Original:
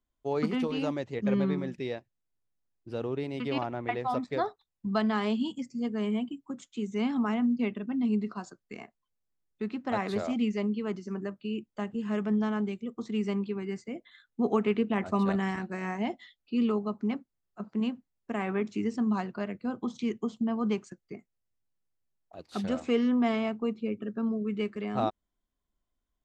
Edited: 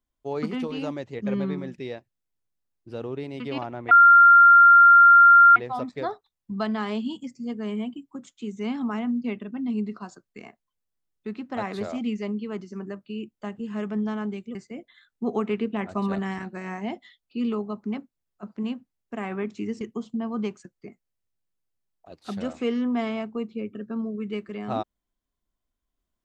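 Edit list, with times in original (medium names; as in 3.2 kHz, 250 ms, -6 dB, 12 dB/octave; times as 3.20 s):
3.91 s: add tone 1.39 kHz -9 dBFS 1.65 s
12.90–13.72 s: delete
18.98–20.08 s: delete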